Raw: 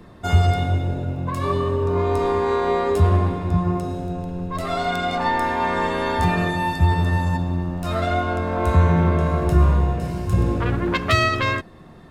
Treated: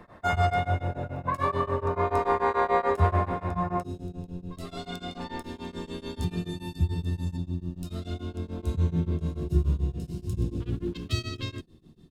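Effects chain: band shelf 1100 Hz +8.5 dB 2.4 oct, from 3.82 s -9.5 dB, from 5.41 s -16 dB; beating tremolo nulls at 6.9 Hz; gain -6 dB

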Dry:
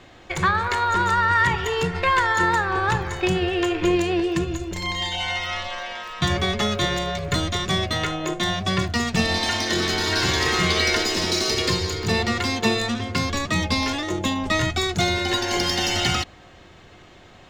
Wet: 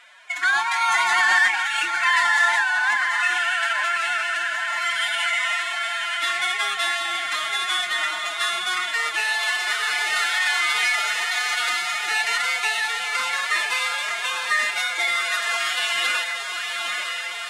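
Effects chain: median filter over 9 samples; Chebyshev band-pass 1500–8700 Hz, order 2; diffused feedback echo 0.908 s, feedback 70%, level -5.5 dB; in parallel at +1 dB: limiter -18.5 dBFS, peak gain reduction 8 dB; on the sum: formant-preserving pitch shift +11.5 st

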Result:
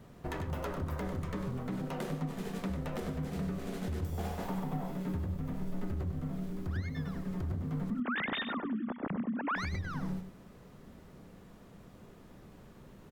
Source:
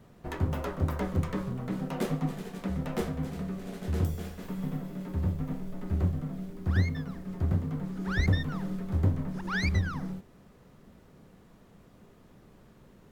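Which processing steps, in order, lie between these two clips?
7.9–9.56 sine-wave speech; compressor, threshold -32 dBFS, peak gain reduction 12 dB; limiter -29.5 dBFS, peak gain reduction 7 dB; 4.12–4.91 bell 810 Hz +13 dB 0.76 oct; on a send: echo 98 ms -8.5 dB; on the sum: gain +1.5 dB

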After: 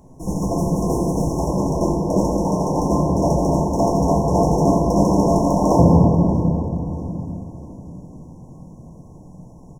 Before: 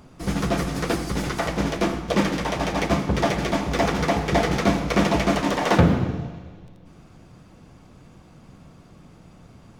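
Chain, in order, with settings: brick-wall FIR band-stop 1100–5300 Hz; feedback echo 0.64 s, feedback 40%, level -20 dB; shoebox room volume 150 m³, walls hard, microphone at 0.61 m

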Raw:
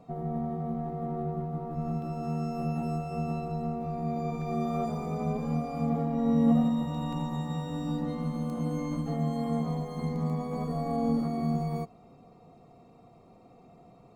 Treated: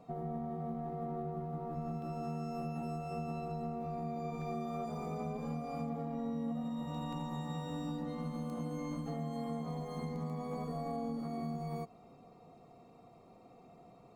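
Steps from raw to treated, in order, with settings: low shelf 210 Hz -5.5 dB; compressor 6:1, threshold -34 dBFS, peak gain reduction 12 dB; gain -1.5 dB

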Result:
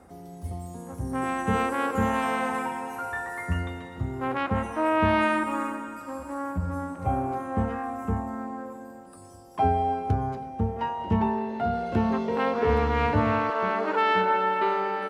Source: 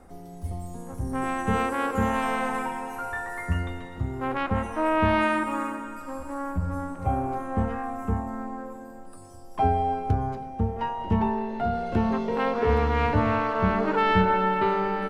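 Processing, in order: HPF 67 Hz 12 dB/oct, from 13.5 s 360 Hz

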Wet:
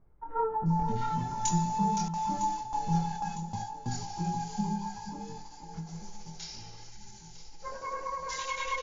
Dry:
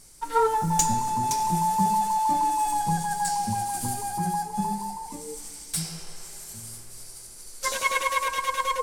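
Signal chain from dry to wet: brick-wall FIR low-pass 7200 Hz; bands offset in time lows, highs 0.66 s, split 1400 Hz; chorus voices 6, 0.61 Hz, delay 24 ms, depth 1.5 ms; 2.08–4.04 gate with hold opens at -22 dBFS; 6.91–7.35 spectral delete 410–1300 Hz; on a send: echo with dull and thin repeats by turns 0.478 s, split 950 Hz, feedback 70%, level -10 dB; on the sum: dynamic EQ 200 Hz, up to +6 dB, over -45 dBFS, Q 2; ending taper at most 120 dB/s; gain -3.5 dB

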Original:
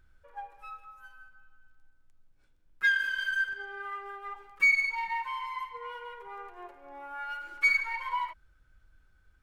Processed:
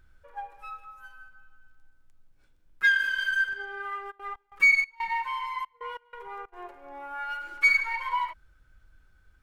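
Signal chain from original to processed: 4.1–6.52 step gate ".xxxx.x.xx" 93 bpm -24 dB; gain +3.5 dB

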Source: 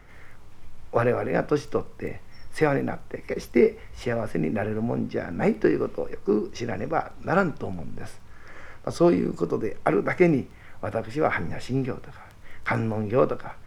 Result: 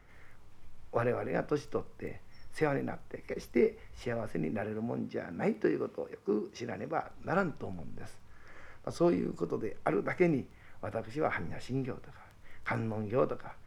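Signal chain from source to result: 4.61–7.04 HPF 110 Hz 12 dB/oct; gain -8.5 dB

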